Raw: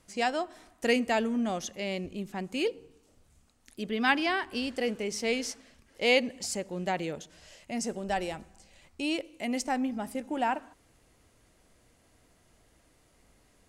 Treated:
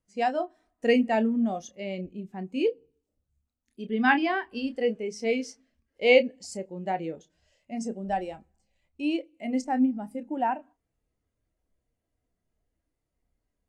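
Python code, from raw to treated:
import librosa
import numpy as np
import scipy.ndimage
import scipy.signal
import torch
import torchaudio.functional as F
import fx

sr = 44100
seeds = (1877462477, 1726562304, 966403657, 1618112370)

y = fx.chorus_voices(x, sr, voices=4, hz=0.33, base_ms=29, depth_ms=2.4, mix_pct=25)
y = fx.spectral_expand(y, sr, expansion=1.5)
y = y * 10.0 ** (5.0 / 20.0)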